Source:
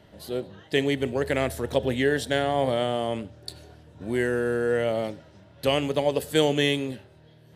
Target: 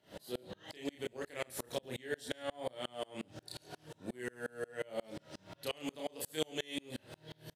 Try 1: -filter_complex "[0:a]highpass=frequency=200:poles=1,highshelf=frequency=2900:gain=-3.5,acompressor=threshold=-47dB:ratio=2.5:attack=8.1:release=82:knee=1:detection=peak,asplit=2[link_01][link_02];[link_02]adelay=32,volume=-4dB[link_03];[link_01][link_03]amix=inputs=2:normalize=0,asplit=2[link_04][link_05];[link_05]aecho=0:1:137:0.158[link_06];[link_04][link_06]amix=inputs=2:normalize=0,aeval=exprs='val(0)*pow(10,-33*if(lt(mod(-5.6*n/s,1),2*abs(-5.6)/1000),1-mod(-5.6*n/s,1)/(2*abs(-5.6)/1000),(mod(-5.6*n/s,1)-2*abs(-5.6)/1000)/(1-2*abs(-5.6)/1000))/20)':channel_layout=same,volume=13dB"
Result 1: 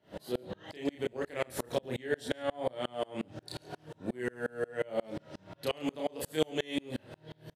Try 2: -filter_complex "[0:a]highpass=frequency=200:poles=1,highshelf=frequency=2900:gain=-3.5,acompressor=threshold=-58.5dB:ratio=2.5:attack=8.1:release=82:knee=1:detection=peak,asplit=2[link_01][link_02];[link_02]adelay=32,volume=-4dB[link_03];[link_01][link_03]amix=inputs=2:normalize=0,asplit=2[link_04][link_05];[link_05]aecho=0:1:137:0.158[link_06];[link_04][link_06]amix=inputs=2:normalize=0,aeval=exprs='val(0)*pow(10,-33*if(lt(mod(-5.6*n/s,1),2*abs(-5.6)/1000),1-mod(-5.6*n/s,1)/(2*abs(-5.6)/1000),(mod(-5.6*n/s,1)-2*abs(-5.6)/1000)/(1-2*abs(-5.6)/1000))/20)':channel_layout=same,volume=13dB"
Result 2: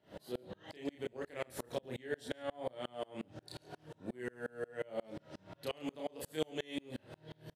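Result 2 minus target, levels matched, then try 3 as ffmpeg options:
8,000 Hz band −6.0 dB
-filter_complex "[0:a]highpass=frequency=200:poles=1,highshelf=frequency=2900:gain=7.5,acompressor=threshold=-58.5dB:ratio=2.5:attack=8.1:release=82:knee=1:detection=peak,asplit=2[link_01][link_02];[link_02]adelay=32,volume=-4dB[link_03];[link_01][link_03]amix=inputs=2:normalize=0,asplit=2[link_04][link_05];[link_05]aecho=0:1:137:0.158[link_06];[link_04][link_06]amix=inputs=2:normalize=0,aeval=exprs='val(0)*pow(10,-33*if(lt(mod(-5.6*n/s,1),2*abs(-5.6)/1000),1-mod(-5.6*n/s,1)/(2*abs(-5.6)/1000),(mod(-5.6*n/s,1)-2*abs(-5.6)/1000)/(1-2*abs(-5.6)/1000))/20)':channel_layout=same,volume=13dB"

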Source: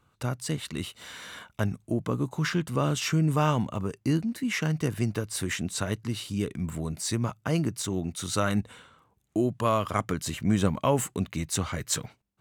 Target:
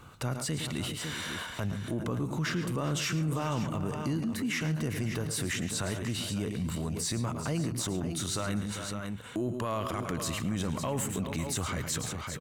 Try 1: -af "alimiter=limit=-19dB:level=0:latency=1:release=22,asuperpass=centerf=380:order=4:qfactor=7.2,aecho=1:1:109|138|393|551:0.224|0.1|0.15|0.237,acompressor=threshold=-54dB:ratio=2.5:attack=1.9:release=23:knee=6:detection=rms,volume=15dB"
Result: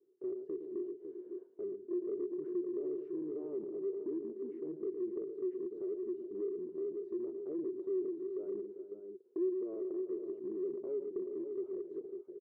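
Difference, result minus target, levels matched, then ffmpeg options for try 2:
500 Hz band +9.0 dB
-af "alimiter=limit=-19dB:level=0:latency=1:release=22,aecho=1:1:109|138|393|551:0.224|0.1|0.15|0.237,acompressor=threshold=-54dB:ratio=2.5:attack=1.9:release=23:knee=6:detection=rms,volume=15dB"

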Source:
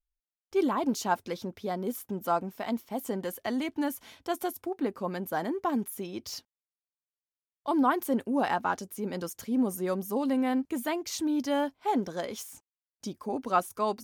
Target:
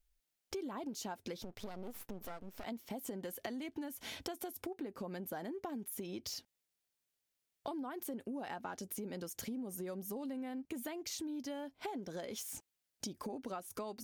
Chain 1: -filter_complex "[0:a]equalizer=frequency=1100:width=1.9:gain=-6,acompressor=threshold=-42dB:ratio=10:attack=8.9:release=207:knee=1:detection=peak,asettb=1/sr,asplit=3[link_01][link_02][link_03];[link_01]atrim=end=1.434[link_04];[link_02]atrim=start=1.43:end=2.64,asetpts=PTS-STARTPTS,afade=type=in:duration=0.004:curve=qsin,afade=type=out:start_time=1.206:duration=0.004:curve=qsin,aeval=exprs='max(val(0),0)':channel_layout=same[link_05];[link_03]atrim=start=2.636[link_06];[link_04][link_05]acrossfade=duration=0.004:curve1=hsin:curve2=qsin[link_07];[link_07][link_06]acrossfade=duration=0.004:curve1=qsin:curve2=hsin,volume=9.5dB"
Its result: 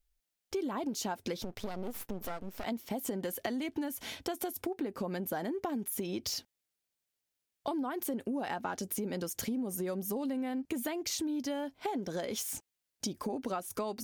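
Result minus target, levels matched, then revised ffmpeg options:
downward compressor: peak gain reduction −7 dB
-filter_complex "[0:a]equalizer=frequency=1100:width=1.9:gain=-6,acompressor=threshold=-50dB:ratio=10:attack=8.9:release=207:knee=1:detection=peak,asettb=1/sr,asplit=3[link_01][link_02][link_03];[link_01]atrim=end=1.434[link_04];[link_02]atrim=start=1.43:end=2.64,asetpts=PTS-STARTPTS,afade=type=in:duration=0.004:curve=qsin,afade=type=out:start_time=1.206:duration=0.004:curve=qsin,aeval=exprs='max(val(0),0)':channel_layout=same[link_05];[link_03]atrim=start=2.636[link_06];[link_04][link_05]acrossfade=duration=0.004:curve1=hsin:curve2=qsin[link_07];[link_07][link_06]acrossfade=duration=0.004:curve1=qsin:curve2=hsin,volume=9.5dB"

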